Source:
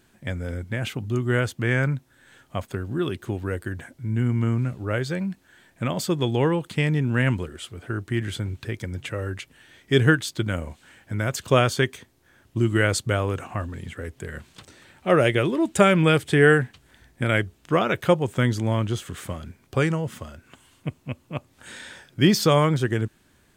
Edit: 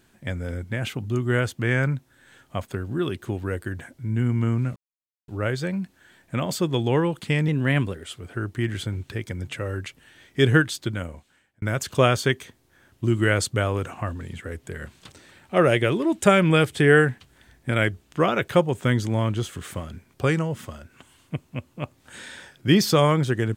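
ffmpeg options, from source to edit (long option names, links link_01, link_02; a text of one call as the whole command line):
ffmpeg -i in.wav -filter_complex "[0:a]asplit=5[link_01][link_02][link_03][link_04][link_05];[link_01]atrim=end=4.76,asetpts=PTS-STARTPTS,afade=type=out:start_time=4.756:duration=0.004:curve=hsin,apad=pad_dur=0.52[link_06];[link_02]atrim=start=4.76:end=6.964,asetpts=PTS-STARTPTS,afade=type=in:duration=0.004:curve=hsin[link_07];[link_03]atrim=start=6.96:end=7.57,asetpts=PTS-STARTPTS,asetrate=48069,aresample=44100[link_08];[link_04]atrim=start=7.566:end=11.15,asetpts=PTS-STARTPTS,afade=type=out:start_time=2.654:duration=0.93[link_09];[link_05]atrim=start=11.15,asetpts=PTS-STARTPTS,afade=type=in:duration=0.004:curve=hsin[link_10];[link_06][link_07]concat=n=2:v=0:a=1[link_11];[link_11][link_08]acrossfade=duration=0.004:curve1=hsin:curve2=hsin[link_12];[link_09][link_10]concat=n=2:v=0:a=1[link_13];[link_12][link_13]acrossfade=duration=0.004:curve1=hsin:curve2=hsin" out.wav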